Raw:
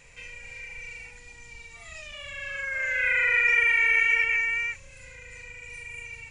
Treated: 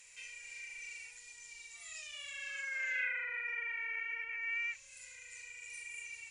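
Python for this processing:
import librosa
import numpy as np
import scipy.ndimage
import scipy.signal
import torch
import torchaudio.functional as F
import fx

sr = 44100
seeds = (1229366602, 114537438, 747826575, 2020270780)

y = scipy.signal.lfilter([1.0, -0.97], [1.0], x)
y = fx.env_lowpass_down(y, sr, base_hz=1200.0, full_db=-30.5)
y = F.gain(torch.from_numpy(y), 3.0).numpy()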